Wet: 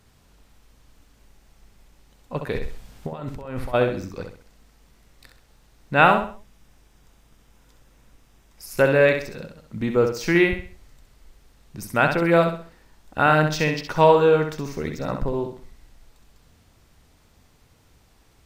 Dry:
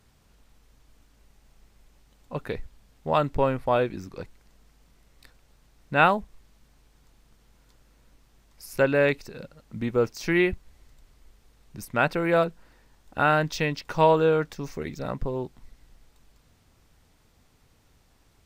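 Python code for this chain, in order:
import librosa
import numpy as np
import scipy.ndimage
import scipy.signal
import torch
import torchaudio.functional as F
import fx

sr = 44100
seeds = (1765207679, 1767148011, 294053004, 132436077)

y = fx.over_compress(x, sr, threshold_db=-35.0, ratio=-1.0, at=(2.52, 3.73), fade=0.02)
y = fx.notch(y, sr, hz=4300.0, q=10.0, at=(6.01, 8.66))
y = fx.echo_feedback(y, sr, ms=65, feedback_pct=35, wet_db=-6.5)
y = y * librosa.db_to_amplitude(3.5)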